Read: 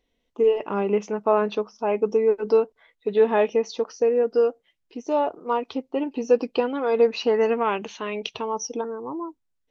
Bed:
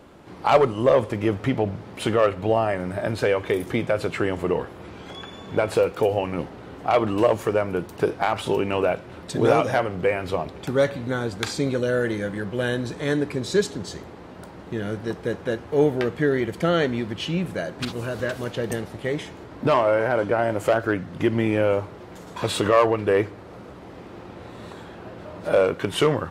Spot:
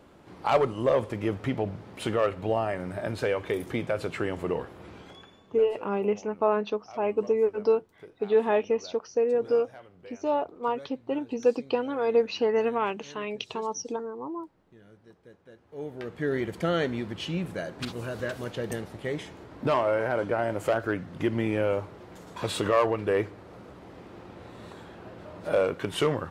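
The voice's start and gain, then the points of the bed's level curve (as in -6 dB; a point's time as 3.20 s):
5.15 s, -4.0 dB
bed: 4.97 s -6 dB
5.72 s -26 dB
15.52 s -26 dB
16.35 s -5.5 dB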